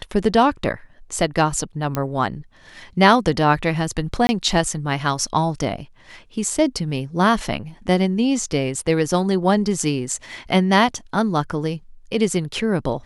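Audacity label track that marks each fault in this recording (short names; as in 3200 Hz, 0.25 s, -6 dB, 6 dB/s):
1.950000	1.950000	pop -9 dBFS
4.270000	4.290000	gap 20 ms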